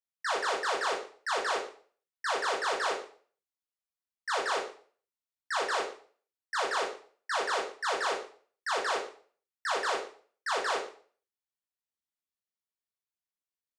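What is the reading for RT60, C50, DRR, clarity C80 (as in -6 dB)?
0.45 s, 6.0 dB, -2.0 dB, 11.0 dB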